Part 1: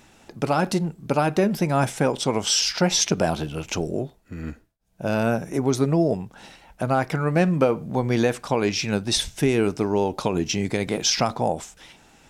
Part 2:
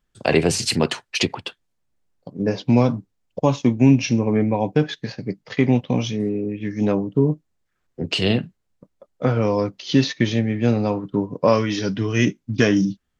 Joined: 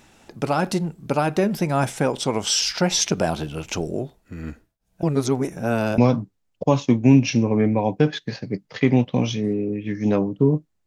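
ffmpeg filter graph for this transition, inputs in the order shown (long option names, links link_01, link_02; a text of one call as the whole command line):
ffmpeg -i cue0.wav -i cue1.wav -filter_complex "[0:a]apad=whole_dur=10.86,atrim=end=10.86,asplit=2[link_01][link_02];[link_01]atrim=end=5.032[link_03];[link_02]atrim=start=5.028:end=5.982,asetpts=PTS-STARTPTS,areverse[link_04];[1:a]atrim=start=2.738:end=7.62[link_05];[link_03][link_04]acrossfade=duration=0.004:curve1=hsin:curve2=hsin[link_06];[link_06][link_05]acrossfade=duration=0.004:curve1=hsin:curve2=hsin" out.wav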